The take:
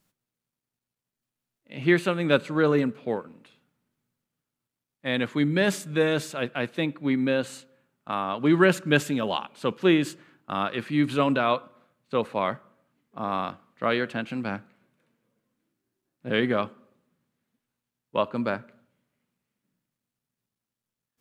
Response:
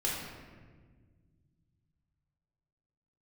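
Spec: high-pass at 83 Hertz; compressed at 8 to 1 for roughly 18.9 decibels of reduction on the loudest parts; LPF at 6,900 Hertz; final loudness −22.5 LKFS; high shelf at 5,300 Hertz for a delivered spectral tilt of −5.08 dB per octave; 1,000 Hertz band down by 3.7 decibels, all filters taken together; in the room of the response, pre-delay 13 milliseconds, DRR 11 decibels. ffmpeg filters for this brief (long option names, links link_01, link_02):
-filter_complex "[0:a]highpass=83,lowpass=6900,equalizer=frequency=1000:width_type=o:gain=-4.5,highshelf=frequency=5300:gain=-8,acompressor=threshold=-36dB:ratio=8,asplit=2[link_01][link_02];[1:a]atrim=start_sample=2205,adelay=13[link_03];[link_02][link_03]afir=irnorm=-1:irlink=0,volume=-17.5dB[link_04];[link_01][link_04]amix=inputs=2:normalize=0,volume=18.5dB"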